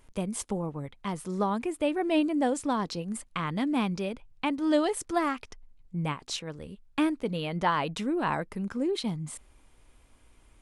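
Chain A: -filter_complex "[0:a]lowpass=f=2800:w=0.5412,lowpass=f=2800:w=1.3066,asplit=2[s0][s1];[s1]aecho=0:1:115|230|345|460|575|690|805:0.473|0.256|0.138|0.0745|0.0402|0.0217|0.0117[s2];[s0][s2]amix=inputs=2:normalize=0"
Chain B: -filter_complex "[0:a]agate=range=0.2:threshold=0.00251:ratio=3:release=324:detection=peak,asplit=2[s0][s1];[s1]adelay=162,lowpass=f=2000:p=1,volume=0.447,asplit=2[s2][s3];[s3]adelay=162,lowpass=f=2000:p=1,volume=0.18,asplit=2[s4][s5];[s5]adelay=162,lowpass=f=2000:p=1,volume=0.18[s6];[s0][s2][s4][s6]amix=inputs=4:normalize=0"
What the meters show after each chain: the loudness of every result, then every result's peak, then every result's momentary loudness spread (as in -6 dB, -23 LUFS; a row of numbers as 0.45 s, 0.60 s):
-29.5 LUFS, -29.5 LUFS; -12.5 dBFS, -12.0 dBFS; 12 LU, 10 LU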